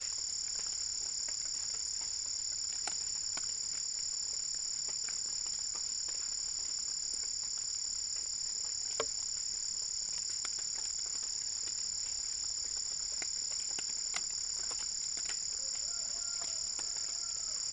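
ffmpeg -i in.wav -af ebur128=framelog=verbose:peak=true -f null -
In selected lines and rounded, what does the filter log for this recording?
Integrated loudness:
  I:         -34.6 LUFS
  Threshold: -44.6 LUFS
Loudness range:
  LRA:         0.2 LU
  Threshold: -54.5 LUFS
  LRA low:   -34.6 LUFS
  LRA high:  -34.5 LUFS
True peak:
  Peak:      -18.4 dBFS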